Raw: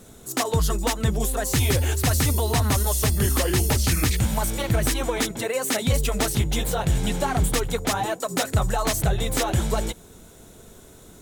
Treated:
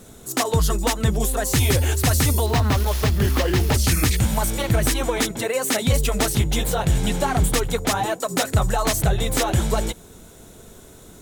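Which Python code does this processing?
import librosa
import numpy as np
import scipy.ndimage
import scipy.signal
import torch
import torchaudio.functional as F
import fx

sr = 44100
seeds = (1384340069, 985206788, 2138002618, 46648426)

y = fx.median_filter(x, sr, points=5, at=(2.46, 3.74))
y = y * 10.0 ** (2.5 / 20.0)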